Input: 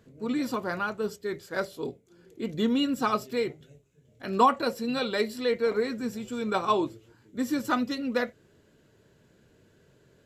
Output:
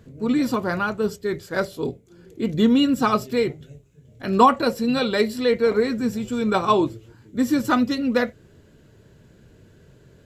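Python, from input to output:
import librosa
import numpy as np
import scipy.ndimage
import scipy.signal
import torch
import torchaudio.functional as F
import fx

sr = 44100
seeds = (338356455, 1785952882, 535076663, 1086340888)

y = fx.low_shelf(x, sr, hz=160.0, db=10.5)
y = y * 10.0 ** (5.5 / 20.0)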